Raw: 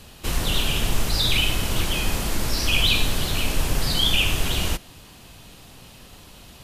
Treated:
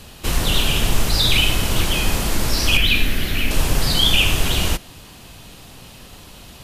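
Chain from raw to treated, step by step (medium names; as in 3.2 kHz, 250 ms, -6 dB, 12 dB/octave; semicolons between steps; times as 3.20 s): 2.77–3.51 s: graphic EQ 125/250/500/1000/2000/4000/8000 Hz -6/+3/-4/-10/+7/-5/-9 dB; trim +4.5 dB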